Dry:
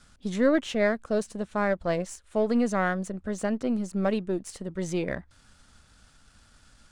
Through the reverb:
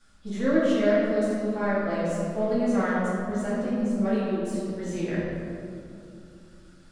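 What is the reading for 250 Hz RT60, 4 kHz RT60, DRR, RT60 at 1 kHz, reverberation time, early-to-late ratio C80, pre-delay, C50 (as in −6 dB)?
3.7 s, 1.4 s, −10.0 dB, 2.3 s, 2.6 s, −0.5 dB, 3 ms, −2.5 dB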